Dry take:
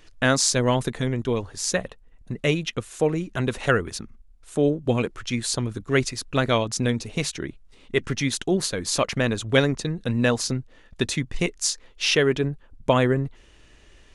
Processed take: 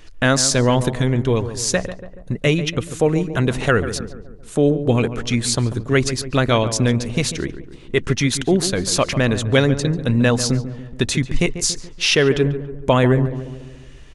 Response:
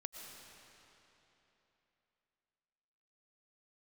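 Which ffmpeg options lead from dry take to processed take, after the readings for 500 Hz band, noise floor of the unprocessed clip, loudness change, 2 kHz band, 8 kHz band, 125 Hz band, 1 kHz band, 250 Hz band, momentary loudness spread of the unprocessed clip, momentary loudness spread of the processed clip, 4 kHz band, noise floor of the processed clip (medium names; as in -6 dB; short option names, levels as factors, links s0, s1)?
+5.0 dB, -53 dBFS, +5.5 dB, +4.0 dB, +4.5 dB, +7.5 dB, +4.0 dB, +6.0 dB, 9 LU, 10 LU, +4.5 dB, -39 dBFS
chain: -filter_complex "[0:a]lowshelf=f=120:g=5,asplit=2[s0][s1];[s1]alimiter=limit=0.2:level=0:latency=1,volume=0.891[s2];[s0][s2]amix=inputs=2:normalize=0,asplit=2[s3][s4];[s4]adelay=142,lowpass=f=1400:p=1,volume=0.282,asplit=2[s5][s6];[s6]adelay=142,lowpass=f=1400:p=1,volume=0.55,asplit=2[s7][s8];[s8]adelay=142,lowpass=f=1400:p=1,volume=0.55,asplit=2[s9][s10];[s10]adelay=142,lowpass=f=1400:p=1,volume=0.55,asplit=2[s11][s12];[s12]adelay=142,lowpass=f=1400:p=1,volume=0.55,asplit=2[s13][s14];[s14]adelay=142,lowpass=f=1400:p=1,volume=0.55[s15];[s3][s5][s7][s9][s11][s13][s15]amix=inputs=7:normalize=0"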